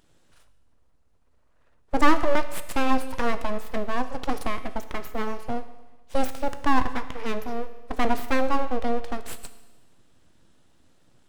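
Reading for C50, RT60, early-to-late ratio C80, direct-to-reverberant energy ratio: 12.5 dB, 1.2 s, 14.0 dB, 10.0 dB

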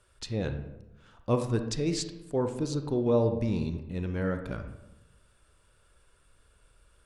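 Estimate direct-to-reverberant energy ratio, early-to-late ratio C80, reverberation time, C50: 7.0 dB, 11.0 dB, 0.95 s, 8.5 dB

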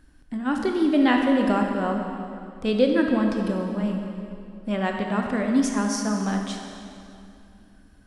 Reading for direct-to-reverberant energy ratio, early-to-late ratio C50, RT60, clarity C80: 2.0 dB, 3.0 dB, 2.7 s, 4.0 dB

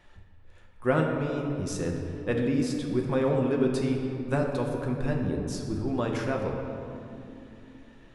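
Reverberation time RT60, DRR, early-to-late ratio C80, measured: 2.9 s, 0.0 dB, 4.0 dB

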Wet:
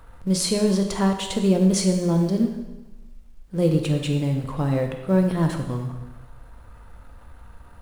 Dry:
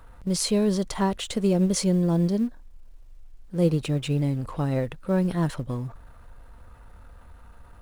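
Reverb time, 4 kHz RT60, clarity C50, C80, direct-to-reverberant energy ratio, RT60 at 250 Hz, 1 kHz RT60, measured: 1.1 s, 1.0 s, 6.0 dB, 8.0 dB, 4.0 dB, 1.1 s, 1.1 s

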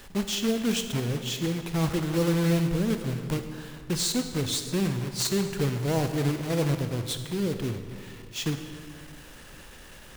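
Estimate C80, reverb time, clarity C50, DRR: 9.0 dB, 2.0 s, 8.0 dB, 7.0 dB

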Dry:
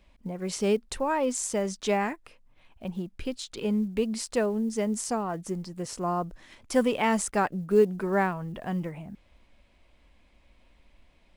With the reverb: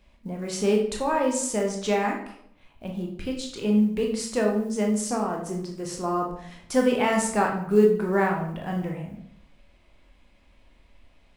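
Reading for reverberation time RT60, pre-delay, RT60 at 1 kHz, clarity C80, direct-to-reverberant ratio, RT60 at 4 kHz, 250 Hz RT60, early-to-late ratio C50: 0.65 s, 16 ms, 0.65 s, 9.5 dB, 0.5 dB, 0.50 s, 0.75 s, 6.0 dB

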